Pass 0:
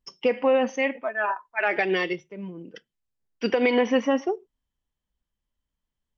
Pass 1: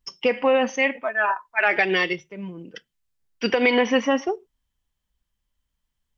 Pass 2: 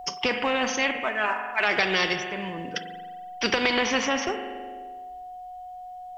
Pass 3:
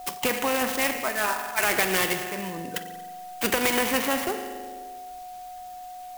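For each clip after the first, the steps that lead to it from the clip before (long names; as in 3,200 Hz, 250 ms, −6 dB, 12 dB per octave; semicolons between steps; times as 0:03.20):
parametric band 360 Hz −6 dB 2.7 octaves; level +6.5 dB
steady tone 730 Hz −39 dBFS; spring reverb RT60 1.2 s, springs 42 ms, chirp 30 ms, DRR 13.5 dB; every bin compressed towards the loudest bin 2 to 1
converter with an unsteady clock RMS 0.052 ms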